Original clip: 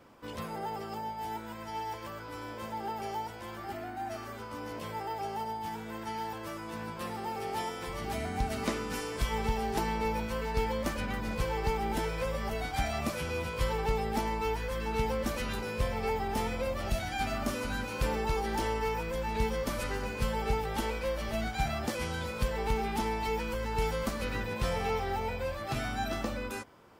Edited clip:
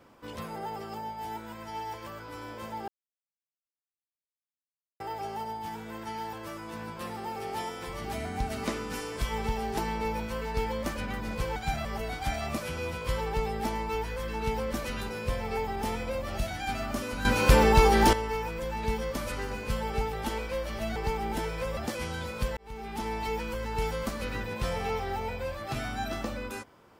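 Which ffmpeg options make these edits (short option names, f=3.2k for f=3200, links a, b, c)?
-filter_complex "[0:a]asplit=10[a][b][c][d][e][f][g][h][i][j];[a]atrim=end=2.88,asetpts=PTS-STARTPTS,afade=t=out:st=2.876:d=0.004:c=hsin[k];[b]atrim=start=2.88:end=5,asetpts=PTS-STARTPTS,volume=0[l];[c]atrim=start=5:end=11.562,asetpts=PTS-STARTPTS,afade=t=in:d=0.004:c=hsin[m];[d]atrim=start=21.478:end=21.772[n];[e]atrim=start=12.368:end=17.772[o];[f]atrim=start=17.768:end=18.652,asetpts=PTS-STARTPTS,volume=11.5dB[p];[g]atrim=start=18.648:end=21.482[q];[h]atrim=start=11.558:end=12.372[r];[i]atrim=start=21.768:end=22.57,asetpts=PTS-STARTPTS,afade=t=out:st=0.798:d=0.004:c=hsin[s];[j]atrim=start=22.57,asetpts=PTS-STARTPTS,afade=t=in:d=0.6[t];[k][l][m]concat=n=3:v=0:a=1[u];[u][n]acrossfade=d=0.004:c1=hsin:c2=hsin[v];[v][o]acrossfade=d=0.004:c1=hsin:c2=hsin[w];[w][p]acrossfade=d=0.004:c1=hsin:c2=hsin[x];[x][q]acrossfade=d=0.004:c1=hsin:c2=hsin[y];[y][r]acrossfade=d=0.004:c1=hsin:c2=hsin[z];[s][t]concat=n=2:v=0:a=1[aa];[z][aa]acrossfade=d=0.004:c1=hsin:c2=hsin"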